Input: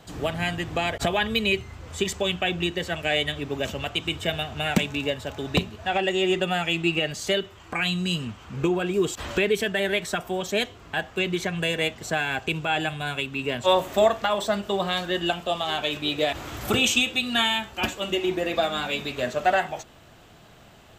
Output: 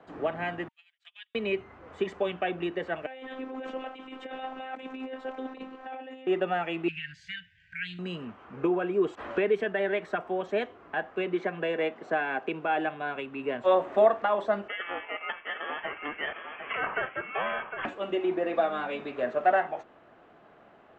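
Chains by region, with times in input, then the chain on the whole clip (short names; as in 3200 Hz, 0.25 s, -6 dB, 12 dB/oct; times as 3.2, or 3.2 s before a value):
0.68–1.35 gate -23 dBFS, range -22 dB + ladder high-pass 2500 Hz, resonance 40% + high shelf 4200 Hz +8.5 dB
3.06–6.27 bell 140 Hz -11.5 dB 0.56 oct + negative-ratio compressor -32 dBFS + robotiser 261 Hz
6.88–7.99 brick-wall FIR band-stop 180–1500 Hz + bell 4900 Hz +4 dB 0.29 oct + Doppler distortion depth 0.13 ms
11.26–13.16 BPF 220–7500 Hz + low shelf 360 Hz +5 dB
14.68–17.85 ring modulator 850 Hz + inverted band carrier 3300 Hz + echo 0.756 s -7.5 dB
whole clip: LPF 6000 Hz 12 dB/oct; three-band isolator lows -19 dB, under 230 Hz, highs -24 dB, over 2000 Hz; notch 920 Hz, Q 28; gain -1 dB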